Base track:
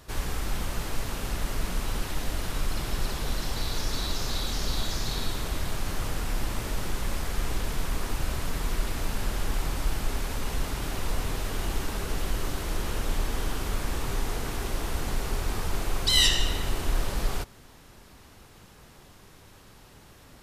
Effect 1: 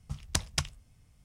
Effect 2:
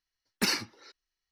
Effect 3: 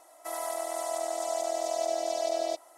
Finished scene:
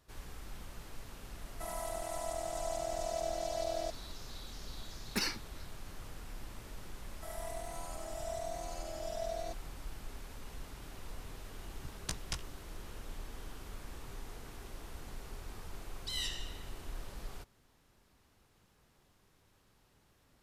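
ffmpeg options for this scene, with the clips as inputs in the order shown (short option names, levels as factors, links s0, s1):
-filter_complex "[3:a]asplit=2[s0][s1];[0:a]volume=0.141[s2];[s1]asplit=2[s3][s4];[s4]adelay=3.4,afreqshift=1.1[s5];[s3][s5]amix=inputs=2:normalize=1[s6];[1:a]asplit=2[s7][s8];[s8]adelay=17,volume=0.596[s9];[s7][s9]amix=inputs=2:normalize=0[s10];[s0]atrim=end=2.77,asetpts=PTS-STARTPTS,volume=0.447,afade=t=in:d=0.004:c=hsin,afade=t=out:st=2.766:d=0.004:c=hsin,adelay=1350[s11];[2:a]atrim=end=1.31,asetpts=PTS-STARTPTS,volume=0.447,afade=t=in:d=0.004:c=hsin,afade=t=out:st=1.306:d=0.004:c=hsin,adelay=4740[s12];[s6]atrim=end=2.77,asetpts=PTS-STARTPTS,volume=0.376,afade=t=in:d=0.004:c=hsin,afade=t=out:st=2.766:d=0.004:c=hsin,adelay=6970[s13];[s10]atrim=end=1.24,asetpts=PTS-STARTPTS,volume=0.299,afade=t=in:d=0.004:c=hsin,afade=t=out:st=1.236:d=0.004:c=hsin,adelay=11740[s14];[s2][s11][s12][s13][s14]amix=inputs=5:normalize=0"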